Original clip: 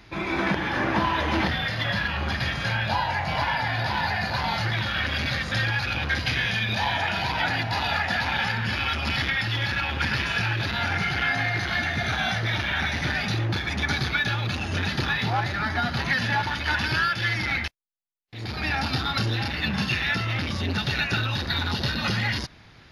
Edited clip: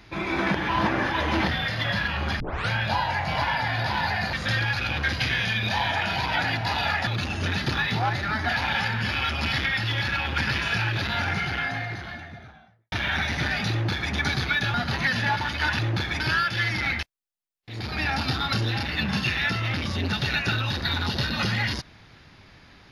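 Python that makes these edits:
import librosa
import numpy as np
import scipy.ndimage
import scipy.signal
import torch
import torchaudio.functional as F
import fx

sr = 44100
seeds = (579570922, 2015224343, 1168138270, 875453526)

y = fx.studio_fade_out(x, sr, start_s=10.73, length_s=1.83)
y = fx.edit(y, sr, fx.reverse_span(start_s=0.69, length_s=0.45),
    fx.tape_start(start_s=2.4, length_s=0.29),
    fx.cut(start_s=4.33, length_s=1.06),
    fx.duplicate(start_s=13.35, length_s=0.41, to_s=16.85),
    fx.move(start_s=14.38, length_s=1.42, to_s=8.13), tone=tone)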